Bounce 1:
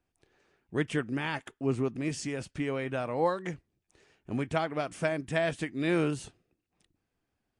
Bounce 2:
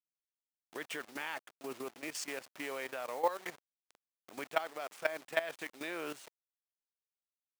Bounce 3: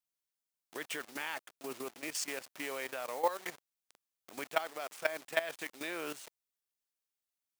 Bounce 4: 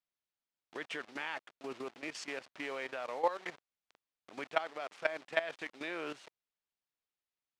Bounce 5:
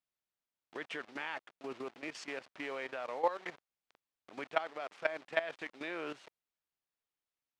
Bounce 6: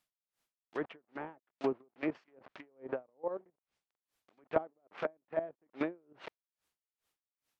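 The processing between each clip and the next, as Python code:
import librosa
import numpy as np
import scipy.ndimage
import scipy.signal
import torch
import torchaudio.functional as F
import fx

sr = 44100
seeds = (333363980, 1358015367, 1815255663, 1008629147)

y1 = fx.delta_hold(x, sr, step_db=-41.0)
y1 = scipy.signal.sosfilt(scipy.signal.butter(2, 590.0, 'highpass', fs=sr, output='sos'), y1)
y1 = fx.level_steps(y1, sr, step_db=14)
y1 = y1 * librosa.db_to_amplitude(2.0)
y2 = fx.high_shelf(y1, sr, hz=3900.0, db=5.5)
y3 = scipy.signal.sosfilt(scipy.signal.butter(2, 3900.0, 'lowpass', fs=sr, output='sos'), y2)
y4 = fx.high_shelf(y3, sr, hz=4600.0, db=-6.0)
y5 = fx.env_lowpass_down(y4, sr, base_hz=380.0, full_db=-36.5)
y5 = y5 * 10.0 ** (-37 * (0.5 - 0.5 * np.cos(2.0 * np.pi * 2.4 * np.arange(len(y5)) / sr)) / 20.0)
y5 = y5 * librosa.db_to_amplitude(12.5)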